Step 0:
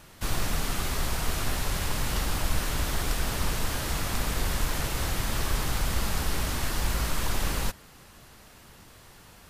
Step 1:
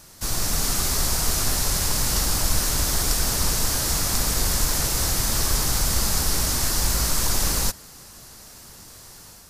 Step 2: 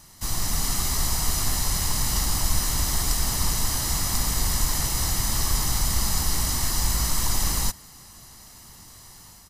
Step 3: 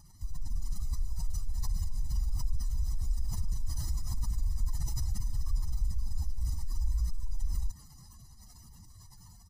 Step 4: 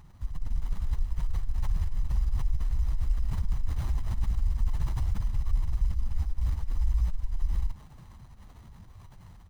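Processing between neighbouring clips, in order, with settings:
high shelf with overshoot 4,000 Hz +8 dB, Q 1.5; automatic gain control gain up to 3.5 dB
comb filter 1 ms, depth 45%; level −3.5 dB
expanding power law on the bin magnitudes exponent 2.2; level −4.5 dB
windowed peak hold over 17 samples; level +4.5 dB

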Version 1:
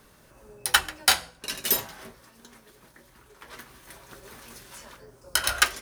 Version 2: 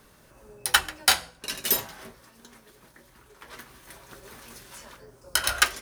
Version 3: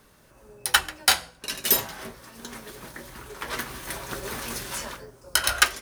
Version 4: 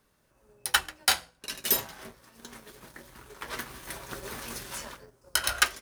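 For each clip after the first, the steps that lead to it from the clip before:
no processing that can be heard
automatic gain control gain up to 14 dB; level −1 dB
mu-law and A-law mismatch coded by A; level −4 dB

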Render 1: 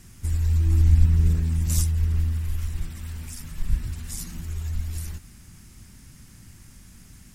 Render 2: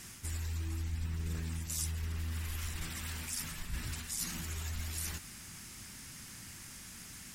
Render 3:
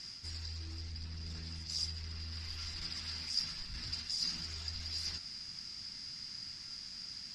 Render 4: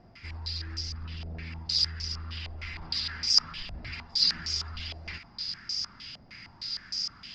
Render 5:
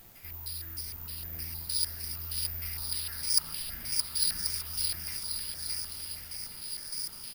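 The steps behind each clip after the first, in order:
low-pass filter 2,500 Hz 6 dB per octave; spectral tilt +3.5 dB per octave; reversed playback; downward compressor 6 to 1, threshold −39 dBFS, peak gain reduction 14 dB; reversed playback; level +4.5 dB
gain into a clipping stage and back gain 32.5 dB; low-pass with resonance 4,900 Hz, resonance Q 15; tuned comb filter 690 Hz, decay 0.36 s, mix 70%; level +3 dB
low-pass on a step sequencer 6.5 Hz 670–5,700 Hz; level +5.5 dB
background noise pink −52 dBFS; on a send: bouncing-ball delay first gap 620 ms, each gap 0.75×, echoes 5; on the sum: bad sample-rate conversion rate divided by 3×, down none, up zero stuff; level −8.5 dB

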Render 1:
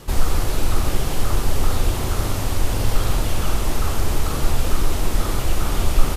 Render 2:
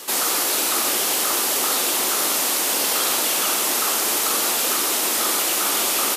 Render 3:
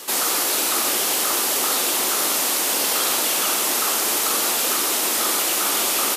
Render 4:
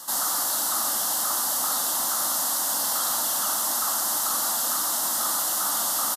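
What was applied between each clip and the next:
high-pass filter 240 Hz 24 dB per octave; spectral tilt +3 dB per octave; level +4 dB
no processing that can be heard
phaser with its sweep stopped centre 1,000 Hz, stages 4; soft clipping −12.5 dBFS, distortion −24 dB; downsampling to 32,000 Hz; level −2 dB

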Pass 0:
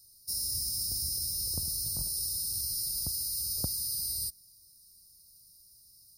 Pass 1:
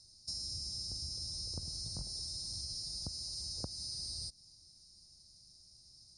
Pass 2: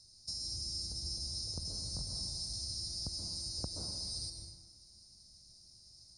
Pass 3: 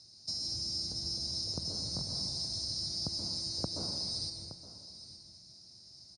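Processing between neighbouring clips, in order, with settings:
Butterworth low-pass 7,600 Hz 36 dB per octave; downward compressor, threshold −43 dBFS, peak gain reduction 13.5 dB; level +4.5 dB
dense smooth reverb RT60 1.4 s, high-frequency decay 0.5×, pre-delay 115 ms, DRR 1.5 dB
band-pass filter 130–5,000 Hz; single-tap delay 869 ms −15 dB; level +7.5 dB

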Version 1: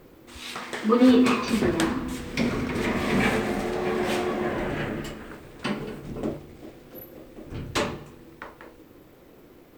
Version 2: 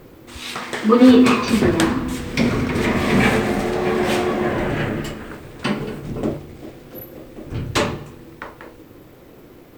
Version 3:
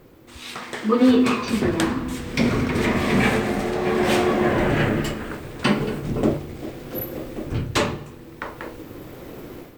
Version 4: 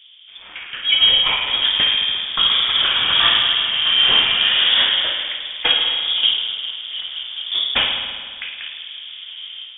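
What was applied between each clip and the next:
parametric band 110 Hz +4.5 dB 0.78 octaves; level +6.5 dB
automatic gain control gain up to 13 dB; level −6 dB
low-pass that shuts in the quiet parts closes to 1,100 Hz, open at −15 dBFS; spring reverb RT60 1.8 s, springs 52 ms, chirp 35 ms, DRR 3 dB; voice inversion scrambler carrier 3,500 Hz; level +2 dB

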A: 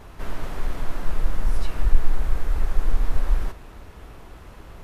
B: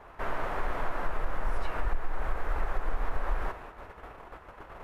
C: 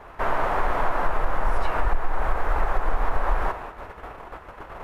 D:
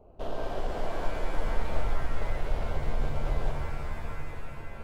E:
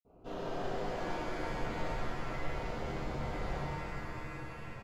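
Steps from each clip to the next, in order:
noise gate −40 dBFS, range −7 dB; three-way crossover with the lows and the highs turned down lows −14 dB, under 460 Hz, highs −17 dB, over 2,200 Hz; downward compressor 6 to 1, threshold −29 dBFS, peak gain reduction 9.5 dB; level +7 dB
dynamic equaliser 860 Hz, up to +5 dB, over −48 dBFS, Q 1.1; level +6.5 dB
adaptive Wiener filter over 25 samples; flat-topped bell 1,400 Hz −13 dB; reverb with rising layers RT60 3.2 s, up +7 semitones, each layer −2 dB, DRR 3.5 dB; level −6.5 dB
single-tap delay 126 ms −6 dB; convolution reverb, pre-delay 47 ms; level +8 dB

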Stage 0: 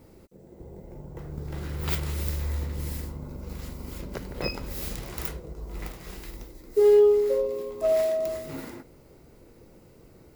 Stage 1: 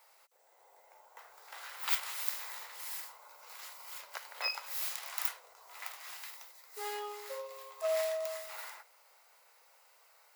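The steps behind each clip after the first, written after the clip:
inverse Chebyshev high-pass filter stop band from 310 Hz, stop band 50 dB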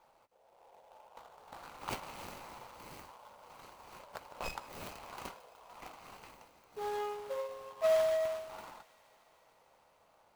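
running median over 25 samples
delay with a high-pass on its return 151 ms, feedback 82%, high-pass 1,600 Hz, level −19.5 dB
level +5.5 dB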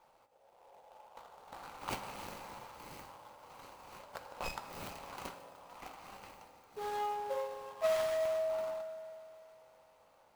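convolution reverb RT60 2.4 s, pre-delay 3 ms, DRR 8 dB

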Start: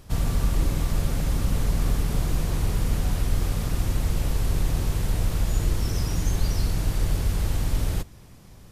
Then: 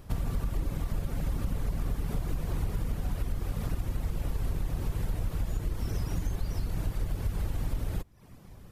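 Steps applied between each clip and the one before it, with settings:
reverb reduction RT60 0.55 s
parametric band 6,200 Hz −7.5 dB 2.3 octaves
downward compressor, threshold −26 dBFS, peak gain reduction 9.5 dB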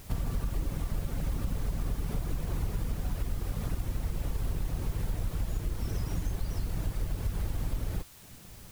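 background noise white −53 dBFS
level −1 dB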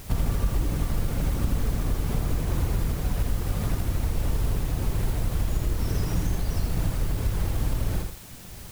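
feedback echo at a low word length 81 ms, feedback 35%, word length 9 bits, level −5 dB
level +6.5 dB

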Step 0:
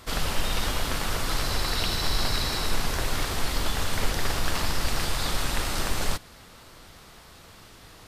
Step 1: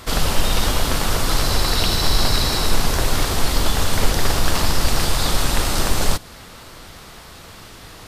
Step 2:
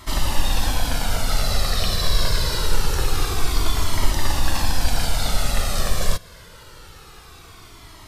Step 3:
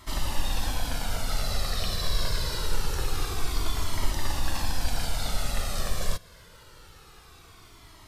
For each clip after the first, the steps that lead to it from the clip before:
dynamic equaliser 2,000 Hz, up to −4 dB, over −43 dBFS, Q 0.87; level +9 dB
flanger whose copies keep moving one way falling 0.25 Hz
surface crackle 15 per second −42 dBFS; level −7.5 dB

